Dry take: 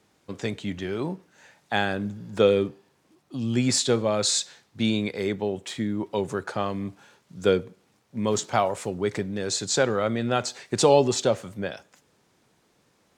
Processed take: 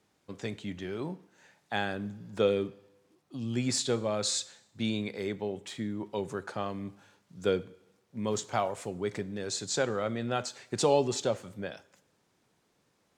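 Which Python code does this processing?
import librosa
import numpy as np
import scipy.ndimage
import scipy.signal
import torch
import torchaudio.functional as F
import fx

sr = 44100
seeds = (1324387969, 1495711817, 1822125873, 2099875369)

y = fx.rev_plate(x, sr, seeds[0], rt60_s=0.85, hf_ratio=0.9, predelay_ms=0, drr_db=17.5)
y = F.gain(torch.from_numpy(y), -7.0).numpy()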